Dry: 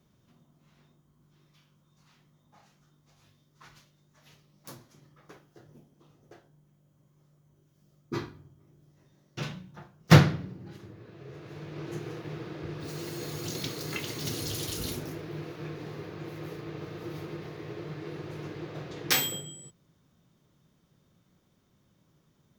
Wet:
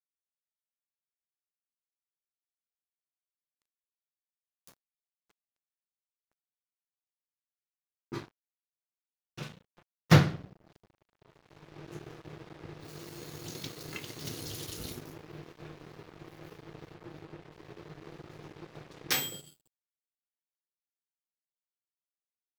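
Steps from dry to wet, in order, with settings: 16.94–17.52 LPF 3000 Hz 6 dB/oct; crossover distortion -42 dBFS; gain -3.5 dB

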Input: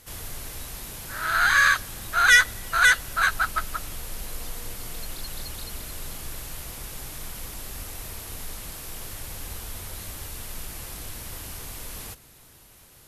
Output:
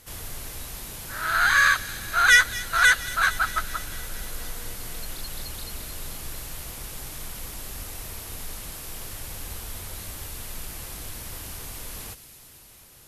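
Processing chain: thin delay 0.23 s, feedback 74%, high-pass 2600 Hz, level -12.5 dB

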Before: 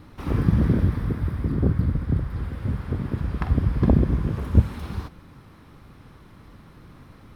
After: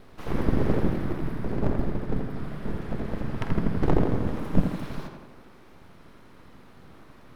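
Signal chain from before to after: full-wave rectifier; tape echo 84 ms, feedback 66%, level -3.5 dB, low-pass 3000 Hz; gain -2 dB

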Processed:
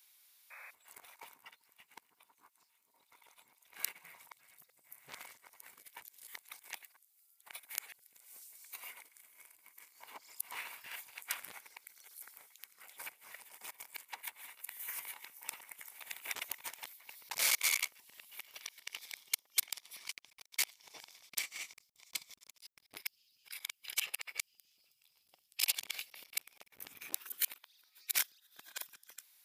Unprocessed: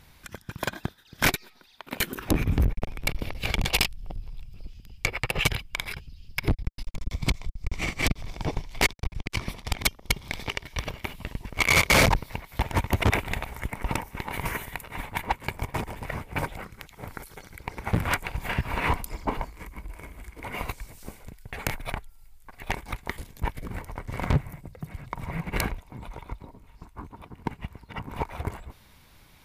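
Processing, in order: whole clip reversed; HPF 110 Hz 6 dB/oct; low shelf 200 Hz -10 dB; painted sound noise, 0.5–0.71, 480–2600 Hz -36 dBFS; differentiator; gain -4 dB

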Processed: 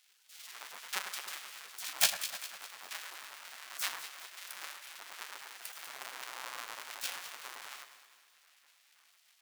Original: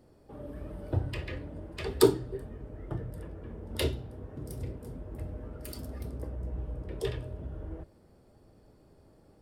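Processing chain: half-waves squared off; spectral gate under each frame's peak -25 dB weak; HPF 500 Hz 6 dB/oct; echo with dull and thin repeats by turns 0.101 s, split 2000 Hz, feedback 68%, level -8 dB; gain +2 dB

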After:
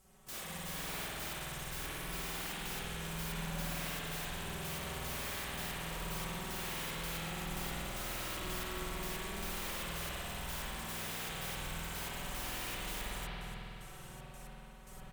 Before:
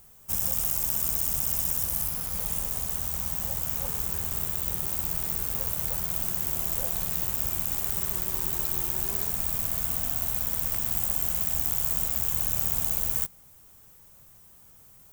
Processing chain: LPF 10000 Hz 12 dB/oct; comb 5.3 ms, depth 86%; limiter -28 dBFS, peak gain reduction 10.5 dB; step gate "..x..xxx.x." 113 bpm -12 dB; wrapped overs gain 42 dB; spring tank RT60 3.3 s, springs 49 ms, chirp 70 ms, DRR -9 dB; gain +2.5 dB

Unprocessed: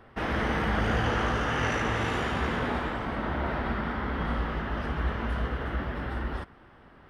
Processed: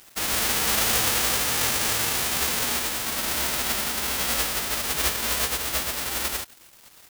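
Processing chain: spectral whitening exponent 0.1; requantised 8-bit, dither none; gain +3.5 dB

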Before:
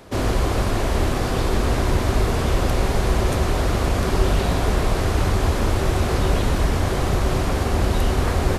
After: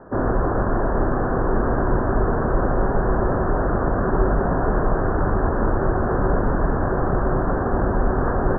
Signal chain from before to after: steep low-pass 1700 Hz 96 dB/oct; bell 72 Hz -10.5 dB 0.96 oct; gain +2.5 dB

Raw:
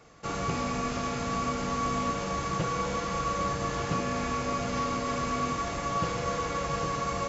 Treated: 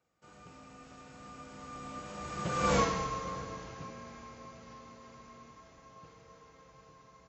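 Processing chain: Doppler pass-by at 2.76, 19 m/s, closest 1.7 m; HPF 42 Hz; outdoor echo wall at 110 m, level -19 dB; gain +5.5 dB

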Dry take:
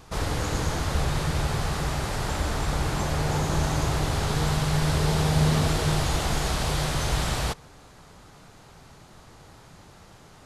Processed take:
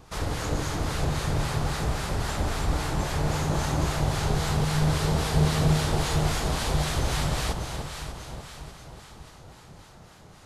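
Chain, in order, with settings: echo with dull and thin repeats by turns 0.296 s, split 1000 Hz, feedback 69%, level -4 dB; harmonic tremolo 3.7 Hz, depth 50%, crossover 970 Hz

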